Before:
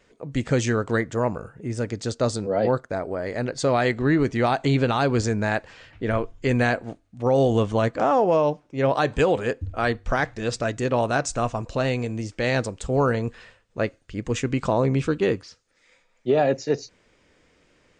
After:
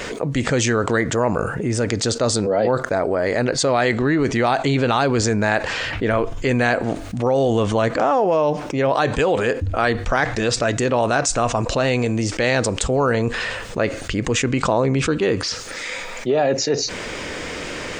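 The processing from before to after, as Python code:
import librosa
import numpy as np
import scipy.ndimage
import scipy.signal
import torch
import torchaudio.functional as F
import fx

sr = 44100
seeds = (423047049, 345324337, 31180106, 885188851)

y = fx.low_shelf(x, sr, hz=250.0, db=-6.0)
y = fx.env_flatten(y, sr, amount_pct=70)
y = y * 10.0 ** (1.5 / 20.0)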